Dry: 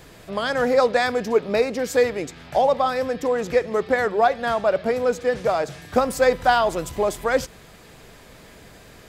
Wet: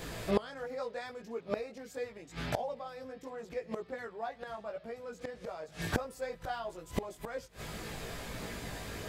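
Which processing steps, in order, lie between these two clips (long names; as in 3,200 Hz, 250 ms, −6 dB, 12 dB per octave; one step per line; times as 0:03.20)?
multi-voice chorus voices 2, 0.77 Hz, delay 18 ms, depth 1.2 ms
gate with flip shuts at −24 dBFS, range −25 dB
level +7 dB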